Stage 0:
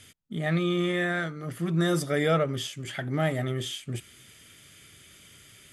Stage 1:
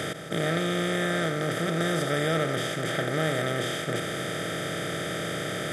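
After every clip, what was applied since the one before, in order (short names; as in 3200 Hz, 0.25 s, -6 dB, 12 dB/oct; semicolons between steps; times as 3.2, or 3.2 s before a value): per-bin compression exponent 0.2; gain -7 dB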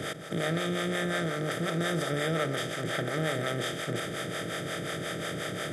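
harmonic tremolo 5.6 Hz, depth 70%, crossover 450 Hz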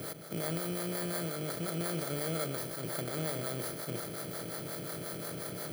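FFT order left unsorted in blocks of 16 samples; gain -5.5 dB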